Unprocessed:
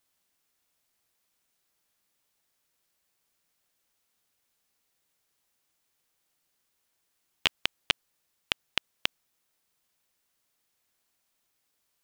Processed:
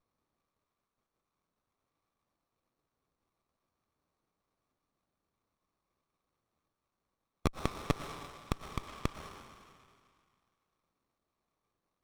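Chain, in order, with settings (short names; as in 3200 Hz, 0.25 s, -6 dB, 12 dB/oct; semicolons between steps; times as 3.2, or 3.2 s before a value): random spectral dropouts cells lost 25%; double band-pass 2300 Hz, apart 2 oct; on a send at -2.5 dB: reverb RT60 2.3 s, pre-delay 75 ms; on the sum: running maximum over 17 samples; gain +8 dB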